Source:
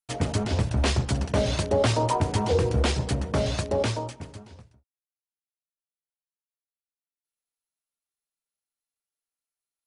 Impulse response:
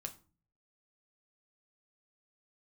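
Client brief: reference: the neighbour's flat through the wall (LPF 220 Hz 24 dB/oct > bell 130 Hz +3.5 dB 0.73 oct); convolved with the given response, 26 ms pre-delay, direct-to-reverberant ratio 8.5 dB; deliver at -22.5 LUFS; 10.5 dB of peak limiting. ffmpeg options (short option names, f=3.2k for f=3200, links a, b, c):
-filter_complex "[0:a]alimiter=limit=-24dB:level=0:latency=1,asplit=2[a][b];[1:a]atrim=start_sample=2205,adelay=26[c];[b][c]afir=irnorm=-1:irlink=0,volume=-5.5dB[d];[a][d]amix=inputs=2:normalize=0,lowpass=f=220:w=0.5412,lowpass=f=220:w=1.3066,equalizer=f=130:t=o:w=0.73:g=3.5,volume=10dB"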